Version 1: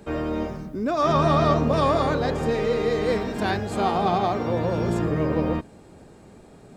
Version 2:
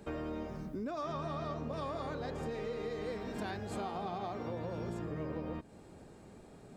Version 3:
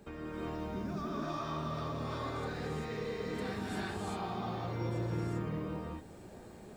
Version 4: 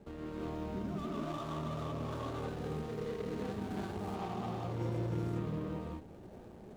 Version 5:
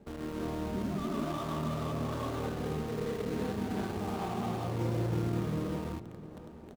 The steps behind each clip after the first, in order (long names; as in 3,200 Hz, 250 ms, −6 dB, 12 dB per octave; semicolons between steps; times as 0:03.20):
downward compressor 6 to 1, threshold −30 dBFS, peak gain reduction 14 dB; level −6.5 dB
dynamic equaliser 610 Hz, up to −8 dB, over −55 dBFS, Q 1.5; background noise blue −80 dBFS; reverb whose tail is shaped and stops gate 420 ms rising, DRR −7 dB; level −3.5 dB
running median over 25 samples
parametric band 240 Hz +3.5 dB 0.28 octaves; in parallel at −5.5 dB: bit reduction 7 bits; on the sum: slap from a distant wall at 120 metres, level −15 dB